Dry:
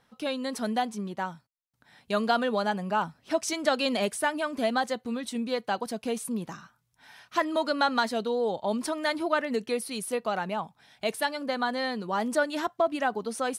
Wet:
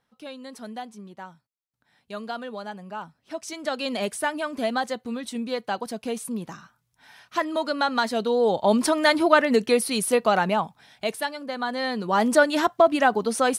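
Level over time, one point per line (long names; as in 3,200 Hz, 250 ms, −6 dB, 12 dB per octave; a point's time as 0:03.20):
0:03.22 −8 dB
0:04.12 +1 dB
0:07.88 +1 dB
0:08.66 +9 dB
0:10.49 +9 dB
0:11.45 −2.5 dB
0:12.22 +8 dB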